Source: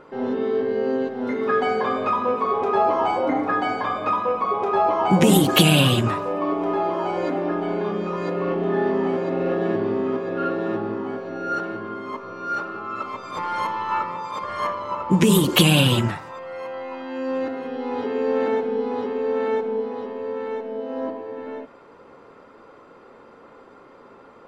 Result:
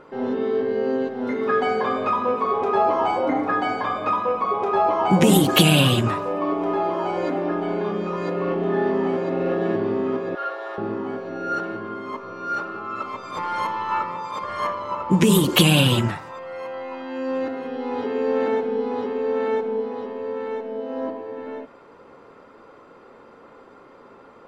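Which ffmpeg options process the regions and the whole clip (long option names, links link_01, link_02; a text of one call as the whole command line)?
ffmpeg -i in.wav -filter_complex "[0:a]asettb=1/sr,asplit=3[link_01][link_02][link_03];[link_01]atrim=end=10.354[link_04];[link_02]atrim=start=10.35:end=10.78,asetpts=PTS-STARTPTS,afade=type=in:duration=0.004:curve=qsin,afade=type=out:start_time=0.426:duration=0.004:curve=qsin,highpass=frequency=600:width=0.5412,highpass=frequency=600:width=1.3066,bandreject=frequency=2600:width=11[link_05];[link_03]atrim=start=10.776[link_06];[link_04][link_05]acrossfade=duration=0.004:curve1=hsin:curve2=qsin[link_07];[link_07][link_06]acrossfade=duration=0.004:curve1=qsin:curve2=hsin" out.wav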